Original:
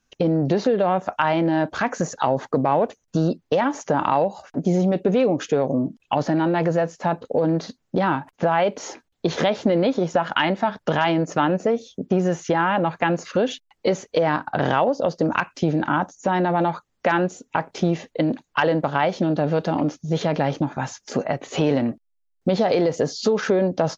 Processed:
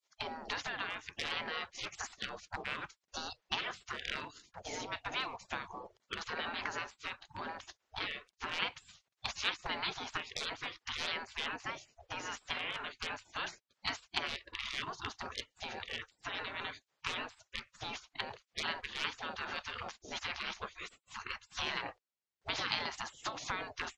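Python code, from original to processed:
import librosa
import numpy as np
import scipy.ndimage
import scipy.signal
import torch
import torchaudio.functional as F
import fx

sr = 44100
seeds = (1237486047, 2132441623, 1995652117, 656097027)

y = np.clip(10.0 ** (10.0 / 20.0) * x, -1.0, 1.0) / 10.0 ** (10.0 / 20.0)
y = scipy.signal.sosfilt(scipy.signal.butter(2, 5900.0, 'lowpass', fs=sr, output='sos'), y)
y = fx.spec_gate(y, sr, threshold_db=-25, keep='weak')
y = y * librosa.db_to_amplitude(1.5)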